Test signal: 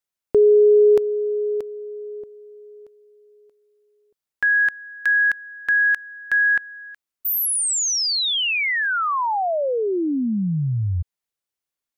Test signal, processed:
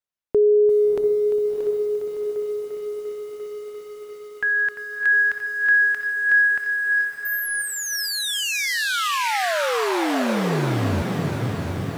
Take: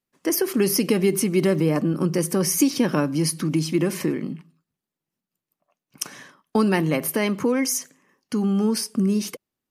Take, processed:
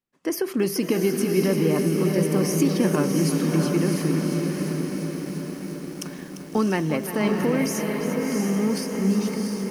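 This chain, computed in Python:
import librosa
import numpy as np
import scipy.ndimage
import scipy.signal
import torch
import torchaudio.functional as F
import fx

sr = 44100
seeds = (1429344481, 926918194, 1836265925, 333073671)

y = fx.high_shelf(x, sr, hz=4900.0, db=-7.5)
y = fx.echo_diffused(y, sr, ms=685, feedback_pct=53, wet_db=-3.5)
y = fx.echo_crushed(y, sr, ms=346, feedback_pct=80, bits=7, wet_db=-10.5)
y = y * librosa.db_to_amplitude(-2.5)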